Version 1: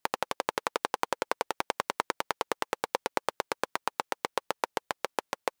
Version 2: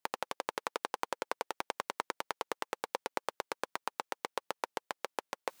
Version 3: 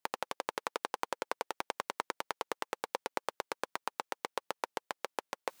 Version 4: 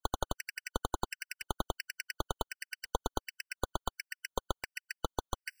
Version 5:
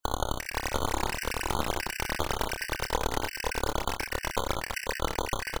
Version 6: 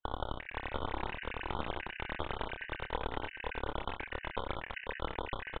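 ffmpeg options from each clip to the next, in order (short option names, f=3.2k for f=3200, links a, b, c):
-af "areverse,acompressor=mode=upward:threshold=-39dB:ratio=2.5,areverse,highpass=f=150:p=1,volume=-6dB"
-af anull
-af "asoftclip=type=tanh:threshold=-26dB,aeval=exprs='0.0501*(cos(1*acos(clip(val(0)/0.0501,-1,1)))-cos(1*PI/2))+0.0126*(cos(3*acos(clip(val(0)/0.0501,-1,1)))-cos(3*PI/2))+0.0224*(cos(8*acos(clip(val(0)/0.0501,-1,1)))-cos(8*PI/2))':c=same,afftfilt=real='re*gt(sin(2*PI*1.4*pts/sr)*(1-2*mod(floor(b*sr/1024/1500),2)),0)':imag='im*gt(sin(2*PI*1.4*pts/sr)*(1-2*mod(floor(b*sr/1024/1500),2)),0)':win_size=1024:overlap=0.75,volume=5.5dB"
-filter_complex "[0:a]asplit=2[a][b];[b]acompressor=threshold=-41dB:ratio=6,volume=-1dB[c];[a][c]amix=inputs=2:normalize=0,asplit=2[d][e];[e]adelay=27,volume=-6.5dB[f];[d][f]amix=inputs=2:normalize=0,aecho=1:1:45|61|200|492|517|832:0.224|0.531|0.119|0.355|0.708|0.562,volume=1.5dB"
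-af "aresample=8000,aresample=44100,volume=-7.5dB"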